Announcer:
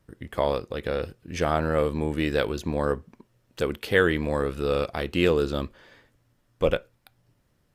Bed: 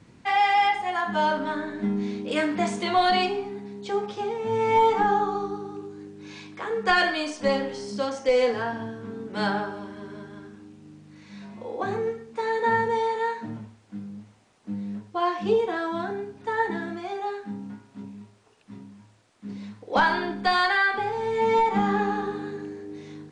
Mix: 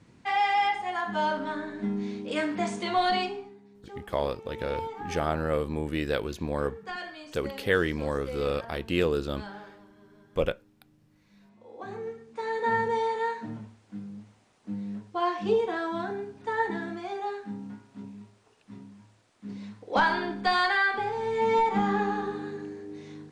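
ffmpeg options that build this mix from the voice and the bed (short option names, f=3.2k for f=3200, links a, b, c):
-filter_complex "[0:a]adelay=3750,volume=-4dB[a];[1:a]volume=10dB,afade=t=out:st=3.12:d=0.45:silence=0.237137,afade=t=in:st=11.59:d=1.3:silence=0.199526[b];[a][b]amix=inputs=2:normalize=0"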